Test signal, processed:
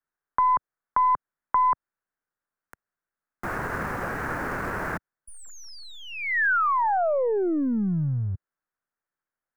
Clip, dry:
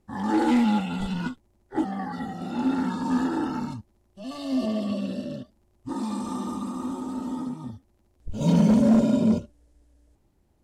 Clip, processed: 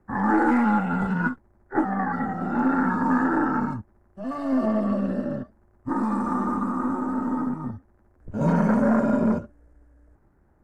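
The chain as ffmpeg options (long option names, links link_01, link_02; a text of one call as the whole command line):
ffmpeg -i in.wav -filter_complex "[0:a]aeval=exprs='if(lt(val(0),0),0.708*val(0),val(0))':channel_layout=same,highshelf=frequency=2300:width_type=q:width=3:gain=-13.5,acrossover=split=95|630|4000[link_01][link_02][link_03][link_04];[link_01]acompressor=threshold=-48dB:ratio=4[link_05];[link_02]acompressor=threshold=-26dB:ratio=4[link_06];[link_03]acompressor=threshold=-28dB:ratio=4[link_07];[link_04]acompressor=threshold=-56dB:ratio=4[link_08];[link_05][link_06][link_07][link_08]amix=inputs=4:normalize=0,volume=6dB" out.wav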